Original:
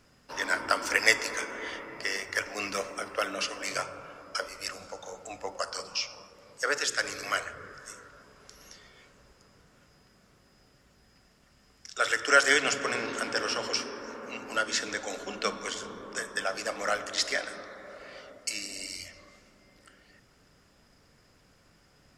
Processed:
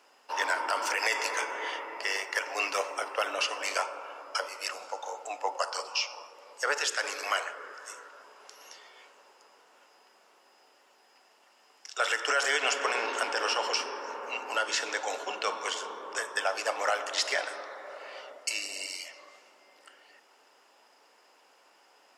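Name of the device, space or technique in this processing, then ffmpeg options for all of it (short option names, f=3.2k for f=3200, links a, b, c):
laptop speaker: -af "highpass=f=360:w=0.5412,highpass=f=360:w=1.3066,equalizer=f=880:t=o:w=0.58:g=11,equalizer=f=2.8k:t=o:w=0.33:g=6.5,alimiter=limit=-16dB:level=0:latency=1:release=51"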